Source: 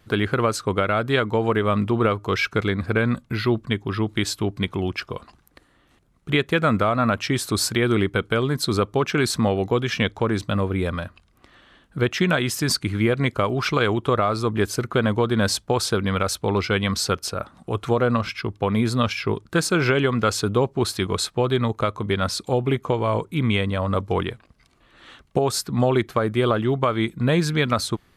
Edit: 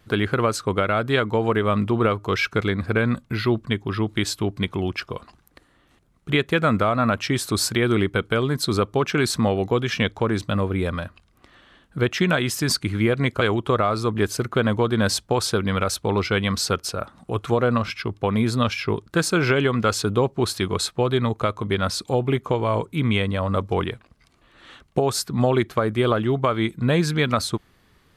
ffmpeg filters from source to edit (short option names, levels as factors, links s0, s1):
-filter_complex "[0:a]asplit=2[s0][s1];[s0]atrim=end=13.412[s2];[s1]atrim=start=13.798[s3];[s2][s3]acrossfade=d=0.004:c1=hsin:c2=hsin"